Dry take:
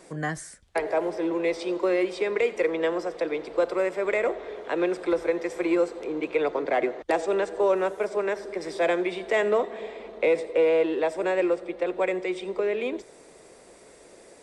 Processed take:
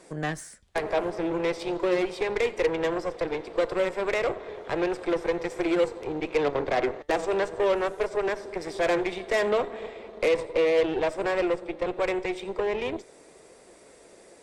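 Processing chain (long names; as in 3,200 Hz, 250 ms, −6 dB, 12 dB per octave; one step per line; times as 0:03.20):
flanger 0.37 Hz, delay 1.9 ms, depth 6.3 ms, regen +87%
harmonic generator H 8 −20 dB, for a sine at −16.5 dBFS
level +3 dB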